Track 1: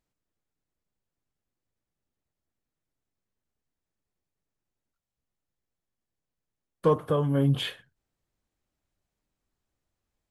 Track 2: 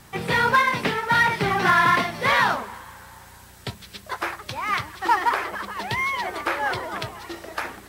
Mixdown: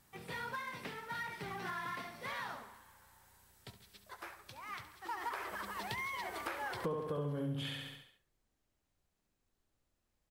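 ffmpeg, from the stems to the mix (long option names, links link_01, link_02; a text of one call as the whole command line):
ffmpeg -i stem1.wav -i stem2.wav -filter_complex "[0:a]volume=-1.5dB,asplit=3[link_01][link_02][link_03];[link_02]volume=-3.5dB[link_04];[1:a]highshelf=frequency=8800:gain=9,volume=-10.5dB,afade=type=in:start_time=5.08:duration=0.27:silence=0.298538,asplit=2[link_05][link_06];[link_06]volume=-12.5dB[link_07];[link_03]apad=whole_len=347710[link_08];[link_05][link_08]sidechaincompress=threshold=-34dB:ratio=8:attack=16:release=872[link_09];[link_04][link_07]amix=inputs=2:normalize=0,aecho=0:1:69|138|207|276|345|414|483:1|0.51|0.26|0.133|0.0677|0.0345|0.0176[link_10];[link_01][link_09][link_10]amix=inputs=3:normalize=0,acompressor=threshold=-38dB:ratio=4" out.wav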